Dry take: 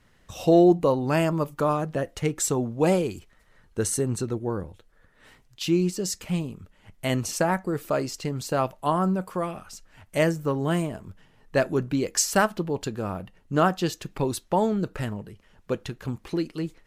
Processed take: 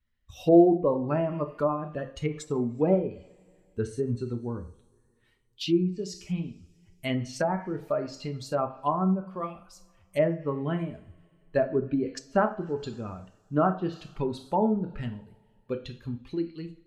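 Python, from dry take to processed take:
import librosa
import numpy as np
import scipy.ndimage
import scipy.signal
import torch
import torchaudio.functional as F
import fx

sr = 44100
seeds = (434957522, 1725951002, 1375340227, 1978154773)

y = fx.bin_expand(x, sr, power=1.5)
y = fx.rev_double_slope(y, sr, seeds[0], early_s=0.42, late_s=2.4, knee_db=-26, drr_db=5.5)
y = fx.env_lowpass_down(y, sr, base_hz=1100.0, full_db=-22.0)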